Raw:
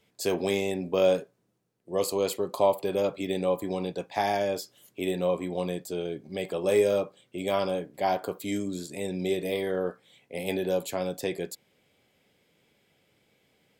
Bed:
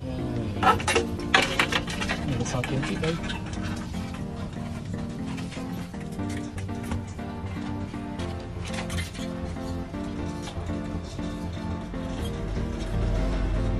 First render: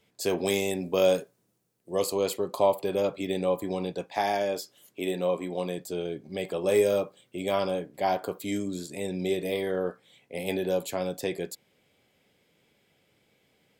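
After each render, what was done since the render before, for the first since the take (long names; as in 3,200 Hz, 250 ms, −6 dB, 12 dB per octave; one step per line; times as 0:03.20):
0:00.45–0:02.02: high-shelf EQ 5,700 Hz +11 dB
0:04.07–0:05.78: parametric band 61 Hz −12 dB 1.7 octaves
0:06.74–0:07.38: high-shelf EQ 11,000 Hz +8.5 dB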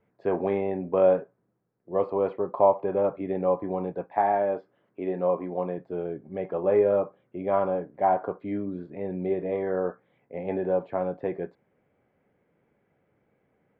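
low-pass filter 1,700 Hz 24 dB per octave
dynamic equaliser 840 Hz, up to +5 dB, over −38 dBFS, Q 1.2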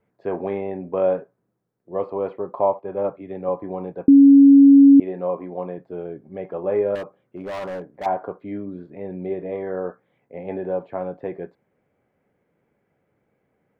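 0:02.79–0:03.49: multiband upward and downward expander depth 100%
0:04.08–0:05.00: beep over 278 Hz −6 dBFS
0:06.95–0:08.06: hard clipping −27 dBFS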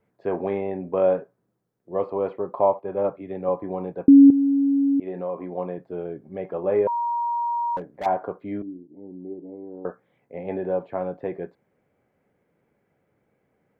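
0:04.30–0:05.43: downward compressor 2 to 1, threshold −28 dBFS
0:06.87–0:07.77: beep over 946 Hz −22 dBFS
0:08.62–0:09.85: formant resonators in series u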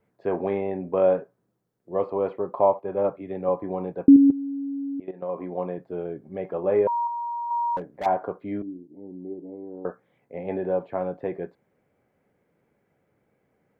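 0:04.16–0:05.29: output level in coarse steps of 15 dB
0:07.07–0:07.51: parametric band 1,200 Hz −11 dB 0.64 octaves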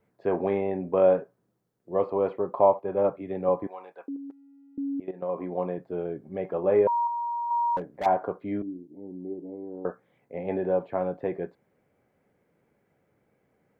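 0:03.67–0:04.78: high-pass filter 1,100 Hz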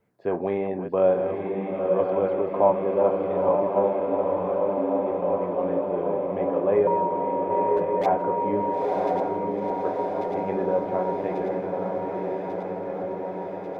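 feedback delay that plays each chunk backwards 571 ms, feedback 84%, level −9 dB
on a send: feedback delay with all-pass diffusion 945 ms, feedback 66%, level −3 dB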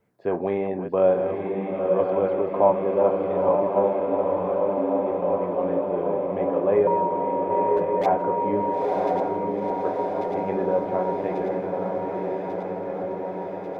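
level +1 dB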